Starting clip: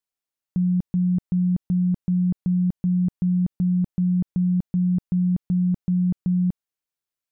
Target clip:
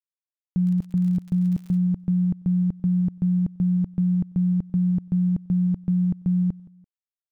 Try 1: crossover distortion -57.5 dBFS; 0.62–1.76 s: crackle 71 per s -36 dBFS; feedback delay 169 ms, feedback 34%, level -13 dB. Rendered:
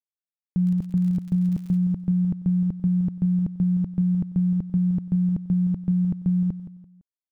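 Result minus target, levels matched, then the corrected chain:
echo-to-direct +8.5 dB
crossover distortion -57.5 dBFS; 0.62–1.76 s: crackle 71 per s -36 dBFS; feedback delay 169 ms, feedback 34%, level -21.5 dB

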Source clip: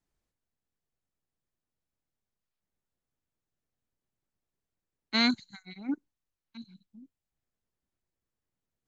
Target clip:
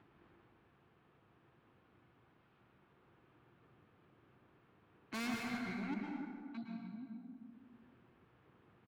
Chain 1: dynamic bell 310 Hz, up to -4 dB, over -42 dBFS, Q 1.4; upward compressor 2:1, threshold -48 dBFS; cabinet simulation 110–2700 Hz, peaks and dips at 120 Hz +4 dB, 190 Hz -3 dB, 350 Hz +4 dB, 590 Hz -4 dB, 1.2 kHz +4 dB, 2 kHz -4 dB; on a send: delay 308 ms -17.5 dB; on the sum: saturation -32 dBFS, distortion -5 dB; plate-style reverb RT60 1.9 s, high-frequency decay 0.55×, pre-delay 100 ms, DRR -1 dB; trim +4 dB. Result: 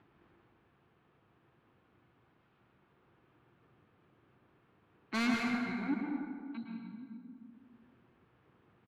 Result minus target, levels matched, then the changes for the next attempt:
saturation: distortion -5 dB
change: saturation -43 dBFS, distortion 0 dB

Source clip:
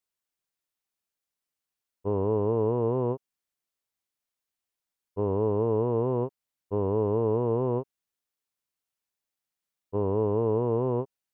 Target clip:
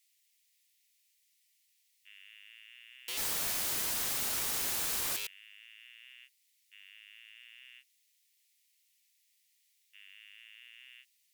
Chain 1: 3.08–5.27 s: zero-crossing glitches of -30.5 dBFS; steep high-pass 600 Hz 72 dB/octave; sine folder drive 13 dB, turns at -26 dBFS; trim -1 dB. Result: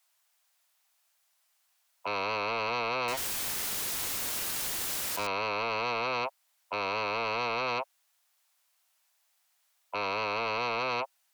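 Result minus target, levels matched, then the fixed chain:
500 Hz band +18.5 dB
3.08–5.27 s: zero-crossing glitches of -30.5 dBFS; steep high-pass 1.9 kHz 72 dB/octave; sine folder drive 13 dB, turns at -26 dBFS; trim -1 dB

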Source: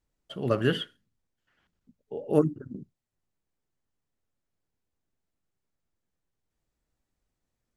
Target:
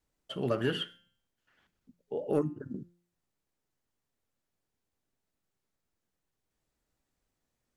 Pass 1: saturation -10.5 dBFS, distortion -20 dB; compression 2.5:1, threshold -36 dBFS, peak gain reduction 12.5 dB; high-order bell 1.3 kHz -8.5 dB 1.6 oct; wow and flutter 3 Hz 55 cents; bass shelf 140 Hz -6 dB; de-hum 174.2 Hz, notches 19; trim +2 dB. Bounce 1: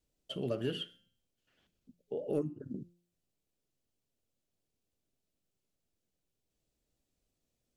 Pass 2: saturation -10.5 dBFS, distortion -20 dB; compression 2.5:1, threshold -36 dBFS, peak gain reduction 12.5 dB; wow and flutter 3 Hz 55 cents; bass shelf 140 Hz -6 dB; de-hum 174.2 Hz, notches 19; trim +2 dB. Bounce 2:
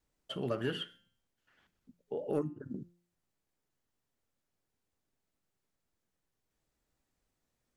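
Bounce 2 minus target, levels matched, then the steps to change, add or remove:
compression: peak gain reduction +4.5 dB
change: compression 2.5:1, threshold -28.5 dBFS, peak gain reduction 8 dB

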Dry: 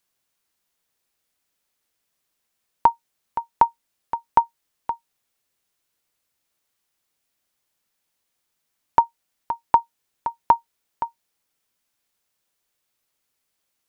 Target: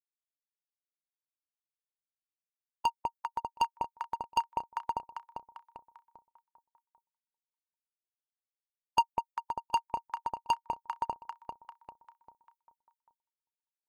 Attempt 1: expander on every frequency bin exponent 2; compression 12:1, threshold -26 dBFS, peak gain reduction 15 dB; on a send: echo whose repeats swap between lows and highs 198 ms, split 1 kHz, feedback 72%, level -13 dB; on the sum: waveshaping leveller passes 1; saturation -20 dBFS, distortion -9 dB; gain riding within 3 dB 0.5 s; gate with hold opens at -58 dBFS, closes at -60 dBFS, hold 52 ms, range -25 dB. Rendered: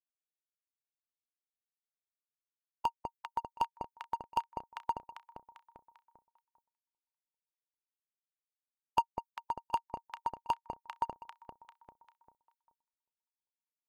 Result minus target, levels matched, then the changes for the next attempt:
compression: peak gain reduction +9.5 dB
change: compression 12:1, threshold -15.5 dBFS, peak gain reduction 5.5 dB

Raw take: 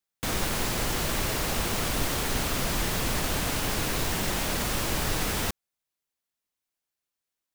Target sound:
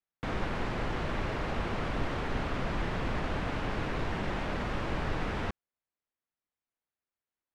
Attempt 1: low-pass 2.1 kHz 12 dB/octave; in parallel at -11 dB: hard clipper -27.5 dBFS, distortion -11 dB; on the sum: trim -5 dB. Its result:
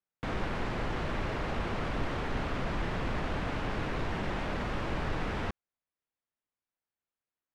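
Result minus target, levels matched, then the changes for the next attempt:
hard clipper: distortion +22 dB
change: hard clipper -19.5 dBFS, distortion -33 dB

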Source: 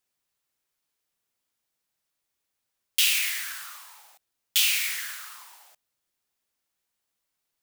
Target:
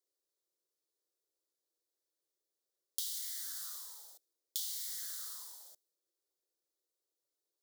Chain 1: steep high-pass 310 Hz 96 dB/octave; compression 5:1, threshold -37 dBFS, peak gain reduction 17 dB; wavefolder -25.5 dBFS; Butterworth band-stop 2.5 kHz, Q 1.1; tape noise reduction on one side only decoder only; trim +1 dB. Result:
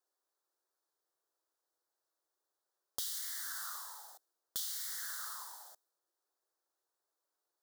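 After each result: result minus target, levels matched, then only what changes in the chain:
1 kHz band +13.5 dB; wavefolder: distortion +11 dB
add after Butterworth band-stop: high-order bell 1.1 kHz -13.5 dB 1.6 oct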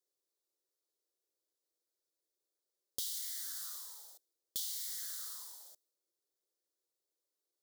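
wavefolder: distortion +11 dB
change: wavefolder -19.5 dBFS

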